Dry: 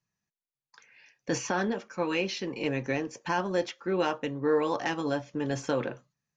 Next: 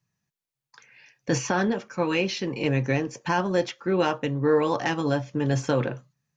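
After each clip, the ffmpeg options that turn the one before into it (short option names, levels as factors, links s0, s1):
-af "equalizer=f=130:w=1.8:g=8,volume=1.58"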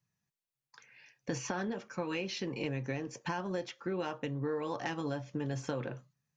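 -af "acompressor=threshold=0.0447:ratio=5,volume=0.531"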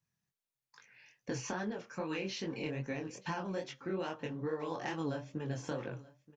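-af "flanger=delay=18.5:depth=7.4:speed=2.4,aecho=1:1:928:0.0944,volume=1.12"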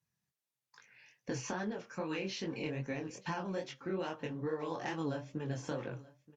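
-ar 44100 -c:a libvorbis -b:a 96k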